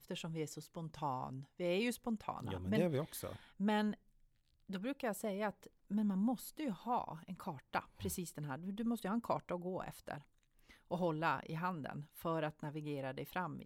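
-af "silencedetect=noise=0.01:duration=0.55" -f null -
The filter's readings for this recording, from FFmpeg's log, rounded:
silence_start: 3.94
silence_end: 4.70 | silence_duration: 0.77
silence_start: 10.15
silence_end: 10.91 | silence_duration: 0.76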